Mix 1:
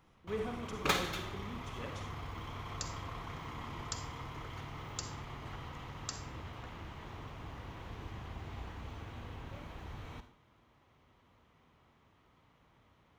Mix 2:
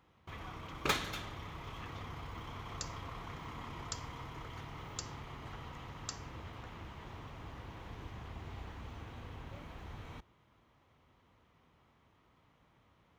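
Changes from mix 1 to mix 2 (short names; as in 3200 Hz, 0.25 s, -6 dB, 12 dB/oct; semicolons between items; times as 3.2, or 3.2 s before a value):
speech: add Butterworth band-pass 2400 Hz, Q 0.85; reverb: off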